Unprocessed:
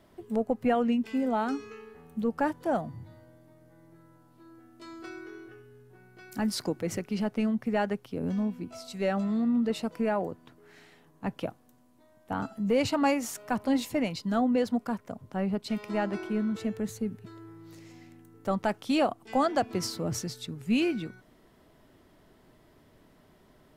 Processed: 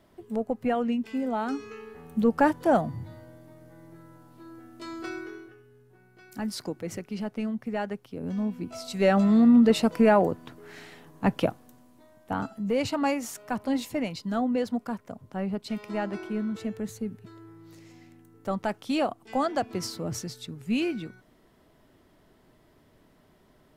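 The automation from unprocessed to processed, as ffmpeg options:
-af "volume=18.5dB,afade=t=in:st=1.41:d=0.77:silence=0.421697,afade=t=out:st=5.14:d=0.4:silence=0.334965,afade=t=in:st=8.23:d=1.17:silence=0.251189,afade=t=out:st=11.38:d=1.24:silence=0.316228"

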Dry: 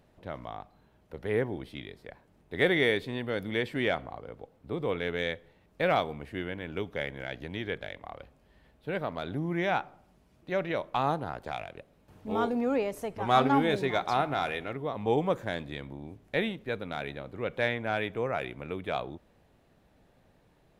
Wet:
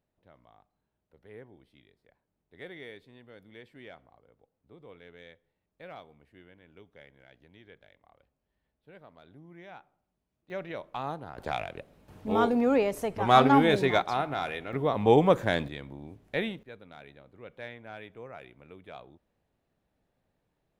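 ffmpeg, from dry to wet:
-af "asetnsamples=n=441:p=0,asendcmd='10.5 volume volume -7dB;11.38 volume volume 4dB;14.02 volume volume -2dB;14.73 volume volume 6.5dB;15.68 volume volume -1.5dB;16.63 volume volume -13.5dB',volume=-19.5dB"

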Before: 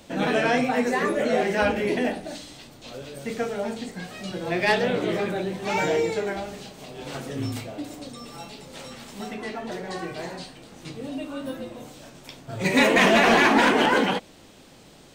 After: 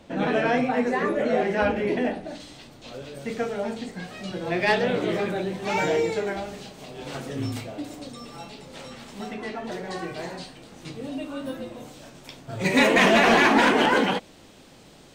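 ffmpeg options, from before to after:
-af "asetnsamples=n=441:p=0,asendcmd='2.4 lowpass f 5800;4.89 lowpass f 10000;8.26 lowpass f 5600;9.64 lowpass f 12000',lowpass=f=2.3k:p=1"

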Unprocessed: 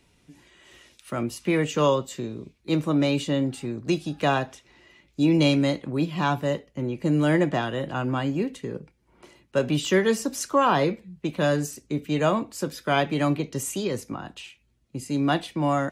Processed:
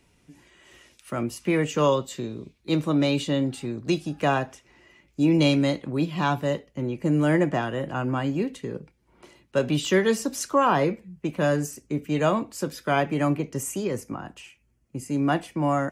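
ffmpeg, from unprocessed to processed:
-af "asetnsamples=n=441:p=0,asendcmd='1.92 equalizer g 2;4 equalizer g -8;5.39 equalizer g -0.5;6.97 equalizer g -10;8.24 equalizer g 0;10.54 equalizer g -9.5;12.15 equalizer g -2.5;12.91 equalizer g -14',equalizer=f=3.8k:t=o:w=0.49:g=-4.5"

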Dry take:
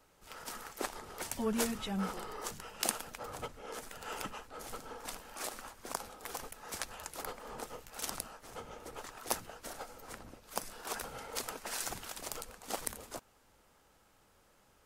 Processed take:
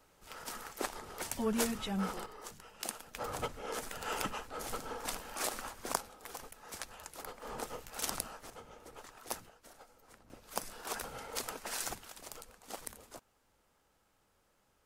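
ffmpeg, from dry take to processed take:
-af "asetnsamples=n=441:p=0,asendcmd='2.26 volume volume -7dB;3.15 volume volume 4.5dB;6 volume volume -4dB;7.42 volume volume 2.5dB;8.5 volume volume -5.5dB;9.49 volume volume -12dB;10.3 volume volume 0dB;11.95 volume volume -6.5dB',volume=0.5dB"

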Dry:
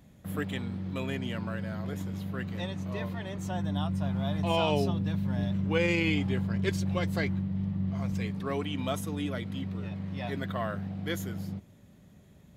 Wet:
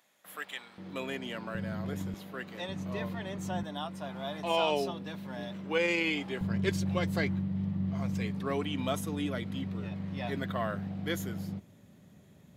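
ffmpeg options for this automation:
-af "asetnsamples=n=441:p=0,asendcmd='0.78 highpass f 290;1.55 highpass f 94;2.14 highpass f 330;2.69 highpass f 130;3.63 highpass f 340;6.41 highpass f 100',highpass=910"

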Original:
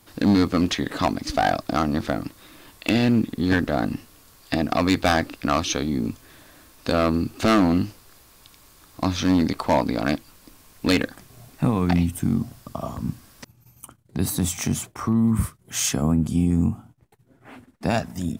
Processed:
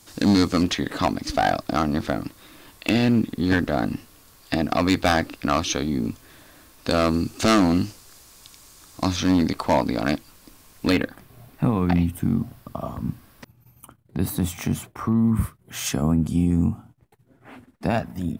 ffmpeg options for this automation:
-af "asetnsamples=n=441:p=0,asendcmd='0.63 equalizer g 0;6.91 equalizer g 7.5;9.16 equalizer g 1;10.9 equalizer g -9.5;15.86 equalizer g -3;17.87 equalizer g -12',equalizer=f=6.8k:t=o:w=1.4:g=9.5"

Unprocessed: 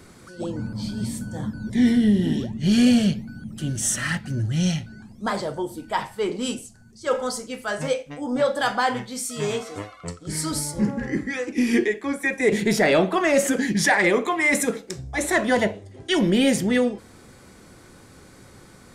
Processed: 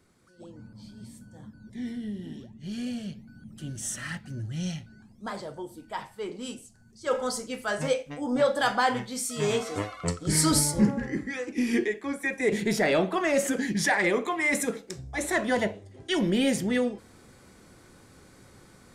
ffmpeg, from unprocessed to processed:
-af "volume=4.5dB,afade=t=in:st=3.04:d=0.47:silence=0.446684,afade=t=in:st=6.57:d=0.82:silence=0.398107,afade=t=in:st=9.37:d=0.69:silence=0.473151,afade=t=out:st=10.56:d=0.53:silence=0.316228"

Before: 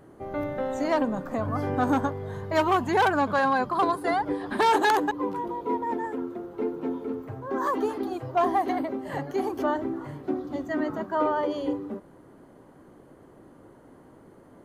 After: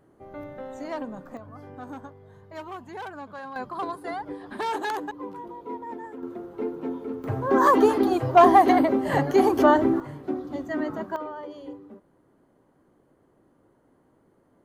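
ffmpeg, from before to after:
-af "asetnsamples=n=441:p=0,asendcmd='1.37 volume volume -15.5dB;3.56 volume volume -7.5dB;6.23 volume volume -1dB;7.24 volume volume 9dB;10 volume volume -0.5dB;11.16 volume volume -11dB',volume=-8.5dB"

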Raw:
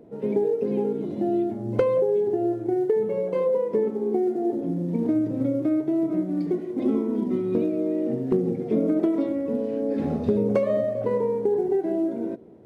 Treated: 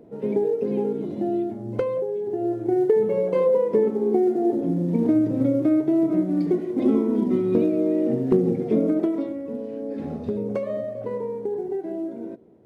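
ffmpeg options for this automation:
-af "volume=10dB,afade=t=out:st=1.02:d=1.17:silence=0.473151,afade=t=in:st=2.19:d=0.63:silence=0.334965,afade=t=out:st=8.57:d=0.81:silence=0.375837"

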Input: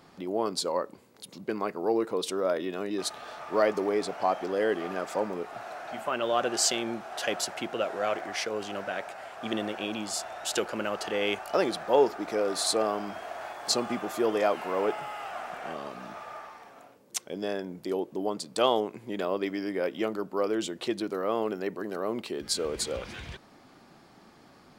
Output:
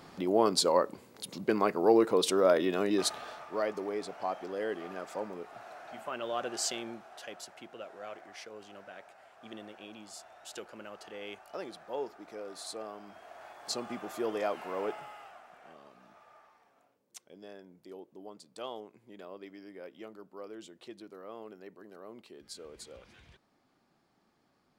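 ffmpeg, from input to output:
-af "volume=11.5dB,afade=t=out:st=2.93:d=0.56:silence=0.266073,afade=t=out:st=6.79:d=0.48:silence=0.446684,afade=t=in:st=13:d=1.15:silence=0.398107,afade=t=out:st=14.88:d=0.53:silence=0.316228"

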